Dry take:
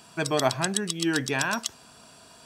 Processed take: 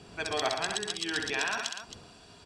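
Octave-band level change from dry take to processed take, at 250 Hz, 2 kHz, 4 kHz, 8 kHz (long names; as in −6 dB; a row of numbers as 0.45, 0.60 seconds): −12.5, −2.5, −1.0, −7.0 decibels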